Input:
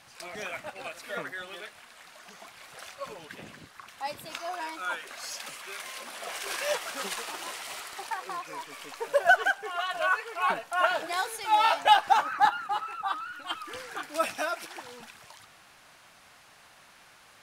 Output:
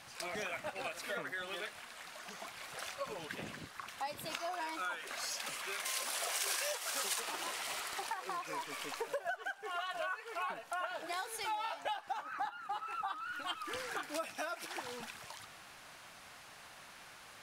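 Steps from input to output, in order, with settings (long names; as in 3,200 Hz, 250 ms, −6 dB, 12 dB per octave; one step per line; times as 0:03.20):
downward compressor 12 to 1, threshold −37 dBFS, peak gain reduction 23 dB
0:05.85–0:07.20: bass and treble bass −15 dB, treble +8 dB
level +1 dB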